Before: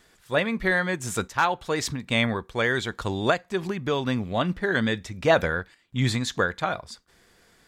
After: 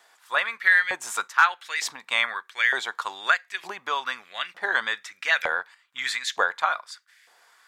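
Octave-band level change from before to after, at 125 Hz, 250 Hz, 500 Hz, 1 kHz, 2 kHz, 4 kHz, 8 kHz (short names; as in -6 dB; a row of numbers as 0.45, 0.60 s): under -30 dB, -24.0 dB, -11.5 dB, +2.0 dB, +5.0 dB, +1.5 dB, 0.0 dB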